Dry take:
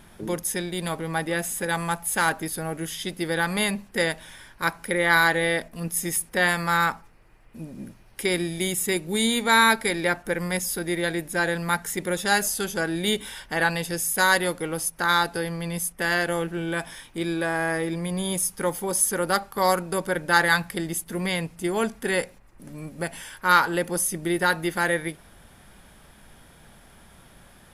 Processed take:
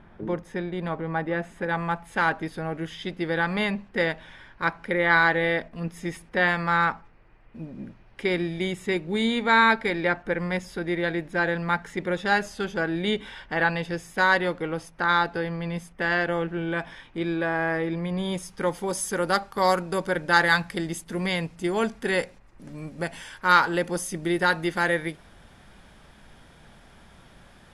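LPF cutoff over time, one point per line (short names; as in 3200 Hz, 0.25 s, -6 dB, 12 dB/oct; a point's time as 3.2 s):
1.42 s 1800 Hz
2.37 s 3000 Hz
18.09 s 3000 Hz
18.95 s 6600 Hz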